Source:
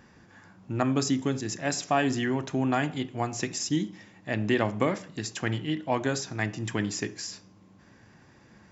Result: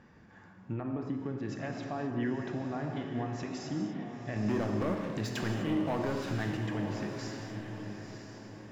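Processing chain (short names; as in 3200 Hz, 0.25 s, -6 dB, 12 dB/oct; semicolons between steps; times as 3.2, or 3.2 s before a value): treble ducked by the level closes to 1400 Hz, closed at -22.5 dBFS; LPF 2100 Hz 6 dB/oct; 4.36–6.57 sample leveller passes 3; compressor, threshold -26 dBFS, peak gain reduction 10 dB; limiter -24.5 dBFS, peak gain reduction 8.5 dB; diffused feedback echo 0.962 s, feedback 41%, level -7 dB; non-linear reverb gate 0.28 s flat, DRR 4 dB; gain -2.5 dB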